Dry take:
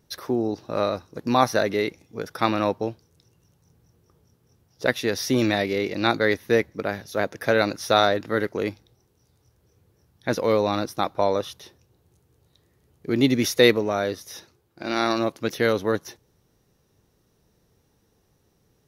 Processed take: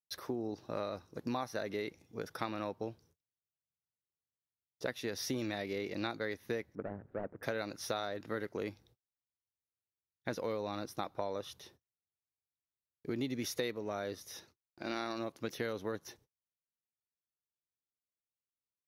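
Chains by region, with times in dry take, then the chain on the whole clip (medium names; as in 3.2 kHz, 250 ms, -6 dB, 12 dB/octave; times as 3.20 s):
6.75–7.43 s: median filter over 41 samples + Chebyshev low-pass 1.7 kHz, order 3
whole clip: gate -53 dBFS, range -38 dB; compression, threshold -25 dBFS; trim -8.5 dB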